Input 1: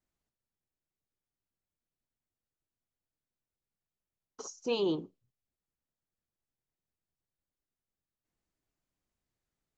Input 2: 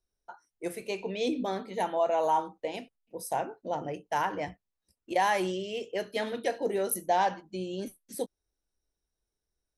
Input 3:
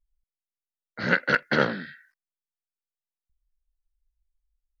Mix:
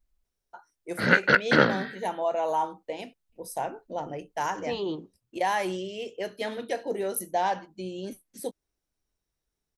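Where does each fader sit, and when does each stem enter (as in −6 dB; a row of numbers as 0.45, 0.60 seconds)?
−1.0, −0.5, +2.5 decibels; 0.00, 0.25, 0.00 seconds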